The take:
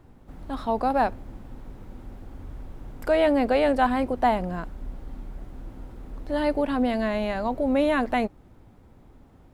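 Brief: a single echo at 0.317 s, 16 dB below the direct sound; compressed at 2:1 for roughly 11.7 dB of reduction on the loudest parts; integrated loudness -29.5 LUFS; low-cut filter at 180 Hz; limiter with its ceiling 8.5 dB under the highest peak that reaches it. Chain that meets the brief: HPF 180 Hz; compressor 2:1, threshold -39 dBFS; limiter -30 dBFS; echo 0.317 s -16 dB; gain +11.5 dB

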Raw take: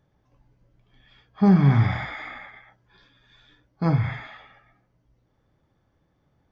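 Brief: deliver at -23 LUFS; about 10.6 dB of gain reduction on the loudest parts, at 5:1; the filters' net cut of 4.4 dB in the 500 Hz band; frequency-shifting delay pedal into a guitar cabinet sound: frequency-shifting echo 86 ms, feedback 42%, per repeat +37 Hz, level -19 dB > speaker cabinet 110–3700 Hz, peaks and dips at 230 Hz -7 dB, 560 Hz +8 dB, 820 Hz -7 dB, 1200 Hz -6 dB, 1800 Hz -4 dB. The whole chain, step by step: bell 500 Hz -8 dB; compressor 5:1, threshold -25 dBFS; frequency-shifting echo 86 ms, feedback 42%, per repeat +37 Hz, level -19 dB; speaker cabinet 110–3700 Hz, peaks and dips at 230 Hz -7 dB, 560 Hz +8 dB, 820 Hz -7 dB, 1200 Hz -6 dB, 1800 Hz -4 dB; gain +11 dB

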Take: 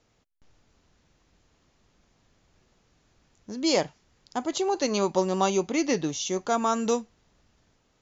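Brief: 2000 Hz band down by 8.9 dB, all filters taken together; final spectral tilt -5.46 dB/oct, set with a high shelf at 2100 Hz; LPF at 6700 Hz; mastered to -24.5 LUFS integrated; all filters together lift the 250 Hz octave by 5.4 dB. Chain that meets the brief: LPF 6700 Hz; bell 250 Hz +7.5 dB; bell 2000 Hz -8 dB; high shelf 2100 Hz -5.5 dB

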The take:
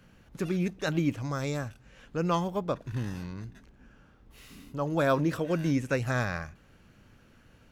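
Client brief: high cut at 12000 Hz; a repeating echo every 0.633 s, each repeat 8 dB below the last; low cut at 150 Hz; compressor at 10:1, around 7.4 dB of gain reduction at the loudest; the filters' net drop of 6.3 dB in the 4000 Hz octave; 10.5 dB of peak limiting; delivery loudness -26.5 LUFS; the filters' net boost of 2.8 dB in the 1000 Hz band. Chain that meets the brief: HPF 150 Hz; LPF 12000 Hz; bell 1000 Hz +4 dB; bell 4000 Hz -8.5 dB; compressor 10:1, threshold -27 dBFS; limiter -27 dBFS; feedback echo 0.633 s, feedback 40%, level -8 dB; gain +12 dB

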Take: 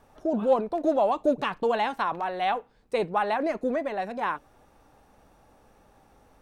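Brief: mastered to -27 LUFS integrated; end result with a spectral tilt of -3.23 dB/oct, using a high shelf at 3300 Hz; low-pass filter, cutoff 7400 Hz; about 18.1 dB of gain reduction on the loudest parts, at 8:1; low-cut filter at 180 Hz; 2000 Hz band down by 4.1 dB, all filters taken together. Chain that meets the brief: HPF 180 Hz; LPF 7400 Hz; bell 2000 Hz -7.5 dB; high shelf 3300 Hz +6.5 dB; compressor 8:1, threshold -37 dBFS; gain +14 dB

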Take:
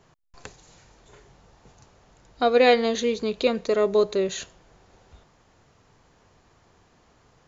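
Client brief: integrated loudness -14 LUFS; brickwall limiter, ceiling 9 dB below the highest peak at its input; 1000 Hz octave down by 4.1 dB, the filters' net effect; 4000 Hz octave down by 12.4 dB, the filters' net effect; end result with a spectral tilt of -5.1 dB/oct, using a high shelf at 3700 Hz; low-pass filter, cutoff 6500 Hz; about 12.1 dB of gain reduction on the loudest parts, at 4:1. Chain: LPF 6500 Hz; bell 1000 Hz -6 dB; high shelf 3700 Hz -8.5 dB; bell 4000 Hz -9 dB; compressor 4:1, threshold -30 dBFS; gain +25 dB; limiter -4 dBFS

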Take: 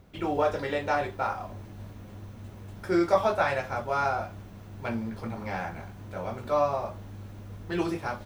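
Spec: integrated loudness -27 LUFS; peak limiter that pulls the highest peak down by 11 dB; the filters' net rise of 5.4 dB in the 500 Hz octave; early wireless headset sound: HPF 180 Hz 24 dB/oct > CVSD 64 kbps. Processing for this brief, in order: bell 500 Hz +7 dB; limiter -17.5 dBFS; HPF 180 Hz 24 dB/oct; CVSD 64 kbps; gain +2.5 dB

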